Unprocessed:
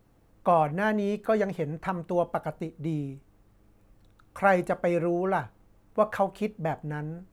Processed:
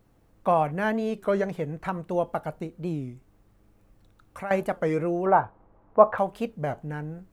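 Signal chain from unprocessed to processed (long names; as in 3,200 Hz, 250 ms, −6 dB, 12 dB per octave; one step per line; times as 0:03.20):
0:03.10–0:04.51: downward compressor 2.5 to 1, threshold −38 dBFS, peak gain reduction 14.5 dB
0:05.26–0:06.18: drawn EQ curve 180 Hz 0 dB, 960 Hz +10 dB, 8,600 Hz −27 dB
wow of a warped record 33 1/3 rpm, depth 160 cents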